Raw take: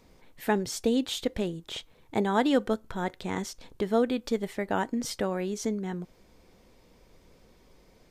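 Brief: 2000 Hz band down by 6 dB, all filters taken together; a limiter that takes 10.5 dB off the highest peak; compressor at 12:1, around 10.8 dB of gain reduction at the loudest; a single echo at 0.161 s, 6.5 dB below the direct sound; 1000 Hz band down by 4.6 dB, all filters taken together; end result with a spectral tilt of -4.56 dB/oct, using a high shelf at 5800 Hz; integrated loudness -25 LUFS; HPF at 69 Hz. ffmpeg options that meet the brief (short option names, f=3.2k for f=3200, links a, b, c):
-af "highpass=69,equalizer=f=1k:t=o:g=-5,equalizer=f=2k:t=o:g=-6.5,highshelf=f=5.8k:g=5,acompressor=threshold=-31dB:ratio=12,alimiter=level_in=6.5dB:limit=-24dB:level=0:latency=1,volume=-6.5dB,aecho=1:1:161:0.473,volume=14.5dB"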